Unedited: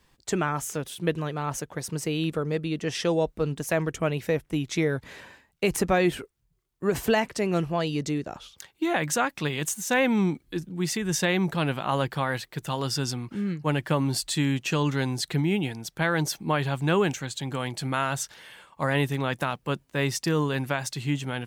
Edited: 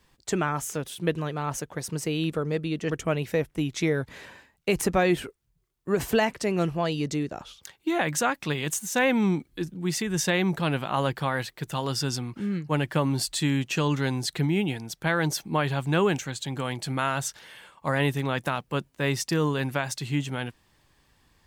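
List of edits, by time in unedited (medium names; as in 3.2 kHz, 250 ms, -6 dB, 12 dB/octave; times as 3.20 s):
2.90–3.85 s: delete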